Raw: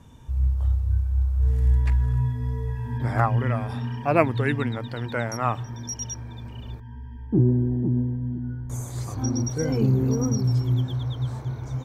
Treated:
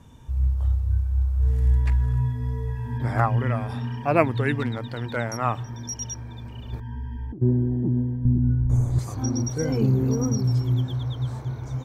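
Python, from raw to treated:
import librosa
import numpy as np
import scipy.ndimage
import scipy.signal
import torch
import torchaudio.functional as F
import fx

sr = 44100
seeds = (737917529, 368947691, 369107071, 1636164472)

y = fx.overload_stage(x, sr, gain_db=19.0, at=(4.58, 5.15), fade=0.02)
y = fx.over_compress(y, sr, threshold_db=-31.0, ratio=-1.0, at=(6.72, 7.41), fade=0.02)
y = fx.tilt_eq(y, sr, slope=-3.5, at=(8.25, 8.99))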